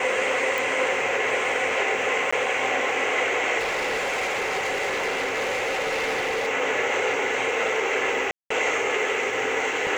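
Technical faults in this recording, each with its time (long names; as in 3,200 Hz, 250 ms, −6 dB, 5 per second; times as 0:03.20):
0:00.58: click
0:02.31–0:02.33: drop-out 15 ms
0:03.58–0:06.48: clipping −22.5 dBFS
0:08.31–0:08.50: drop-out 194 ms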